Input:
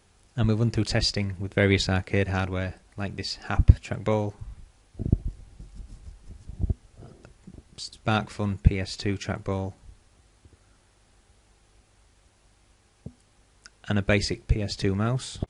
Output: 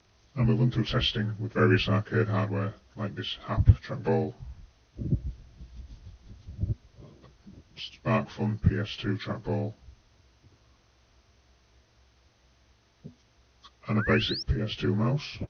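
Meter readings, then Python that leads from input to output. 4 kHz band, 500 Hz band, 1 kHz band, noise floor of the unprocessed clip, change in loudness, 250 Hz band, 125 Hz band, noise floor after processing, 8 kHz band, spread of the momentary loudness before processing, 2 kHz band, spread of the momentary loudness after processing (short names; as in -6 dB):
-1.0 dB, -1.5 dB, -1.5 dB, -62 dBFS, -1.5 dB, -1.0 dB, -1.0 dB, -64 dBFS, under -15 dB, 15 LU, -2.0 dB, 16 LU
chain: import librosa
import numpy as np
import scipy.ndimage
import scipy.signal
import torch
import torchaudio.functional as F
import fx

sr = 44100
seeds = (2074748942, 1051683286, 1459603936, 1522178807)

y = fx.partial_stretch(x, sr, pct=86)
y = fx.spec_paint(y, sr, seeds[0], shape='rise', start_s=13.98, length_s=0.45, low_hz=1300.0, high_hz=5700.0, level_db=-34.0)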